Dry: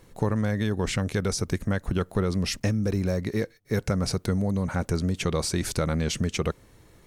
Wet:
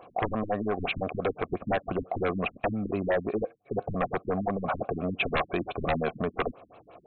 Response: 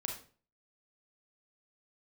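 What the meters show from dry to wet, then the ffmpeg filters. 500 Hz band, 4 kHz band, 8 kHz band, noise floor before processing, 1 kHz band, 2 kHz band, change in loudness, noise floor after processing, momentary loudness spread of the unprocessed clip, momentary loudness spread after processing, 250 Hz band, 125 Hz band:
+0.5 dB, -8.0 dB, under -40 dB, -56 dBFS, +5.5 dB, +1.0 dB, -3.5 dB, -61 dBFS, 3 LU, 5 LU, -5.5 dB, -10.5 dB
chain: -filter_complex "[0:a]asplit=3[a][b][c];[a]bandpass=f=730:t=q:w=8,volume=0dB[d];[b]bandpass=f=1.09k:t=q:w=8,volume=-6dB[e];[c]bandpass=f=2.44k:t=q:w=8,volume=-9dB[f];[d][e][f]amix=inputs=3:normalize=0,aeval=exprs='0.0531*sin(PI/2*4.47*val(0)/0.0531)':c=same,afftfilt=real='re*lt(b*sr/1024,290*pow(4300/290,0.5+0.5*sin(2*PI*5.8*pts/sr)))':imag='im*lt(b*sr/1024,290*pow(4300/290,0.5+0.5*sin(2*PI*5.8*pts/sr)))':win_size=1024:overlap=0.75,volume=5dB"

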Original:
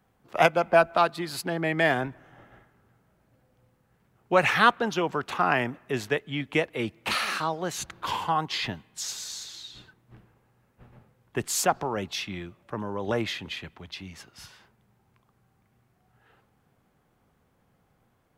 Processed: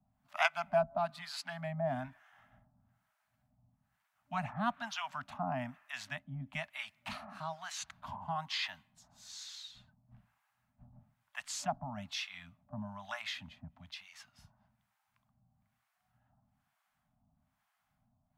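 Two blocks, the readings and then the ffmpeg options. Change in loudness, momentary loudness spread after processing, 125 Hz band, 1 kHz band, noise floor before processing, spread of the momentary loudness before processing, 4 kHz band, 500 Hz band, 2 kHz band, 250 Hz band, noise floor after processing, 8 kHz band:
-12.0 dB, 16 LU, -9.0 dB, -12.0 dB, -69 dBFS, 16 LU, -9.5 dB, -13.0 dB, -12.5 dB, -13.0 dB, -82 dBFS, -13.0 dB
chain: -filter_complex "[0:a]acrossover=split=200|1200|6400[a][b][c][d];[a]volume=33.5dB,asoftclip=hard,volume=-33.5dB[e];[e][b][c][d]amix=inputs=4:normalize=0,acrossover=split=800[f][g];[f]aeval=exprs='val(0)*(1-1/2+1/2*cos(2*PI*1.1*n/s))':c=same[h];[g]aeval=exprs='val(0)*(1-1/2-1/2*cos(2*PI*1.1*n/s))':c=same[i];[h][i]amix=inputs=2:normalize=0,acrossover=split=7700[j][k];[k]acompressor=threshold=-58dB:ratio=4:attack=1:release=60[l];[j][l]amix=inputs=2:normalize=0,afftfilt=real='re*(1-between(b*sr/4096,270,590))':imag='im*(1-between(b*sr/4096,270,590))':win_size=4096:overlap=0.75,volume=-5dB"

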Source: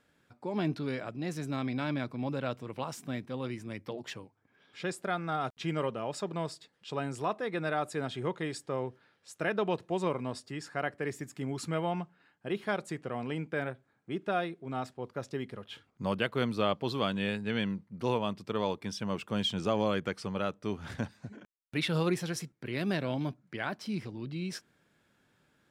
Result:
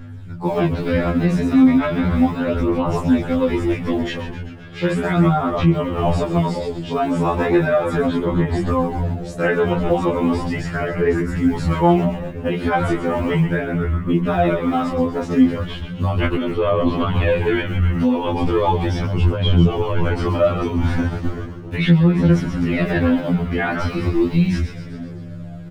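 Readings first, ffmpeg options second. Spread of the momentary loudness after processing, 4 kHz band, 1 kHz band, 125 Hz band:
8 LU, +7.0 dB, +13.0 dB, +18.5 dB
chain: -filter_complex "[0:a]acrusher=bits=8:mode=log:mix=0:aa=0.000001,highshelf=f=4.8k:g=-6,aeval=exprs='val(0)+0.001*(sin(2*PI*50*n/s)+sin(2*PI*2*50*n/s)/2+sin(2*PI*3*50*n/s)/3+sin(2*PI*4*50*n/s)/4+sin(2*PI*5*50*n/s)/5)':c=same,flanger=delay=19.5:depth=4:speed=1.3,lowshelf=f=200:g=11,bandreject=f=60:t=h:w=6,bandreject=f=120:t=h:w=6,bandreject=f=180:t=h:w=6,acrossover=split=3000[a][b];[b]acompressor=threshold=-59dB:ratio=4:attack=1:release=60[c];[a][c]amix=inputs=2:normalize=0,aphaser=in_gain=1:out_gain=1:delay=4.2:decay=0.54:speed=0.36:type=sinusoidal,asplit=9[d][e][f][g][h][i][j][k][l];[e]adelay=130,afreqshift=-110,volume=-9dB[m];[f]adelay=260,afreqshift=-220,volume=-13.2dB[n];[g]adelay=390,afreqshift=-330,volume=-17.3dB[o];[h]adelay=520,afreqshift=-440,volume=-21.5dB[p];[i]adelay=650,afreqshift=-550,volume=-25.6dB[q];[j]adelay=780,afreqshift=-660,volume=-29.8dB[r];[k]adelay=910,afreqshift=-770,volume=-33.9dB[s];[l]adelay=1040,afreqshift=-880,volume=-38.1dB[t];[d][m][n][o][p][q][r][s][t]amix=inputs=9:normalize=0,acompressor=threshold=-30dB:ratio=2.5,alimiter=level_in=27dB:limit=-1dB:release=50:level=0:latency=1,afftfilt=real='re*2*eq(mod(b,4),0)':imag='im*2*eq(mod(b,4),0)':win_size=2048:overlap=0.75,volume=-6dB"

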